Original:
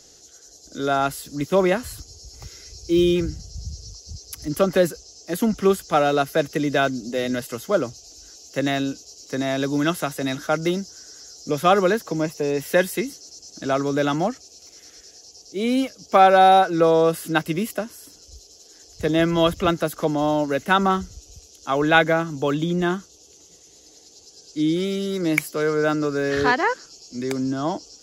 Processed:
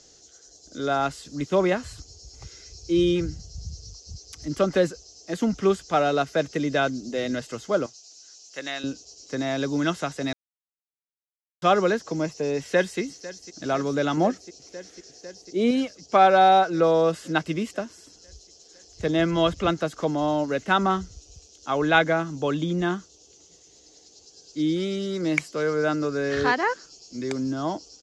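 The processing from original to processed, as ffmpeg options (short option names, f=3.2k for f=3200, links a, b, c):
-filter_complex "[0:a]asettb=1/sr,asplit=3[a][b][c];[a]atrim=end=7.864[d];[b]atrim=start=7.86:end=8.84,asetpts=PTS-STARTPTS,afade=t=in:d=0.004:c=qsin,afade=t=out:st=0.976:d=0.004:c=qsin,highpass=f=1.4k:p=1[e];[c]atrim=start=8.836[f];[d][e]acrossfade=d=0.004:c1=hsin:c2=qsin[g];[g][f]acrossfade=d=0.004:c1=qsin:c2=hsin,asplit=2[h][i];[i]afade=t=in:st=12.59:d=0.01,afade=t=out:st=13:d=0.01,aecho=0:1:500|1000|1500|2000|2500|3000|3500|4000|4500|5000|5500|6000:0.141254|0.113003|0.0904024|0.0723219|0.0578575|0.046286|0.0370288|0.0296231|0.0236984|0.0189588|0.015167|0.0121336[j];[h][j]amix=inputs=2:normalize=0,asettb=1/sr,asplit=3[k][l][m];[k]atrim=end=14.174[n];[l]atrim=start=14.17:end=15.71,asetpts=PTS-STARTPTS,afade=t=in:d=0.004:c=qsin,afade=t=out:st=1.536:d=0.004:c=qsin,equalizer=f=350:t=o:w=2.3:g=6[o];[m]atrim=start=15.706[p];[n][o]acrossfade=d=0.004:c1=hsin:c2=qsin[q];[q][p]acrossfade=d=0.004:c1=qsin:c2=hsin,asplit=3[r][s][t];[r]atrim=end=10.33,asetpts=PTS-STARTPTS,afade=t=out:st=10.326:d=0.004:c=hsin[u];[s]atrim=start=10.33:end=11.62,asetpts=PTS-STARTPTS,volume=0[v];[t]atrim=start=11.62,asetpts=PTS-STARTPTS,afade=t=in:d=0.004:c=hsin[w];[u][v][w]concat=n=3:v=0:a=1,lowpass=f=7.7k:w=0.5412,lowpass=f=7.7k:w=1.3066,volume=-3dB"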